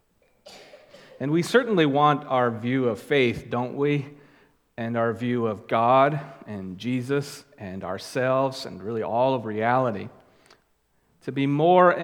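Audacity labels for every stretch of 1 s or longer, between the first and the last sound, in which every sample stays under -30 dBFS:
10.060000	11.280000	silence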